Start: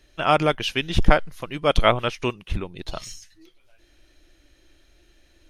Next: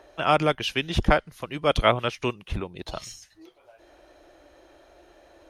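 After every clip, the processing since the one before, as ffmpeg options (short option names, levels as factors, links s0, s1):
-filter_complex "[0:a]highpass=40,acrossover=split=580|890[s0][s1][s2];[s1]acompressor=mode=upward:threshold=0.0224:ratio=2.5[s3];[s0][s3][s2]amix=inputs=3:normalize=0,volume=0.794"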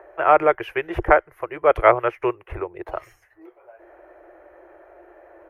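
-af "firequalizer=gain_entry='entry(110,0);entry(230,-23);entry(340,11);entry(2000,9);entry(3700,-21);entry(7700,-16);entry(12000,-1)':delay=0.05:min_phase=1,volume=0.631"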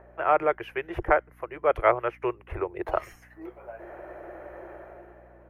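-af "dynaudnorm=f=100:g=13:m=4.47,aeval=exprs='val(0)+0.00398*(sin(2*PI*60*n/s)+sin(2*PI*2*60*n/s)/2+sin(2*PI*3*60*n/s)/3+sin(2*PI*4*60*n/s)/4+sin(2*PI*5*60*n/s)/5)':c=same,volume=0.447"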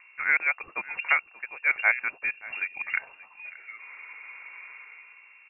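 -af "aecho=1:1:581:0.106,lowpass=f=2400:t=q:w=0.5098,lowpass=f=2400:t=q:w=0.6013,lowpass=f=2400:t=q:w=0.9,lowpass=f=2400:t=q:w=2.563,afreqshift=-2800,volume=0.794"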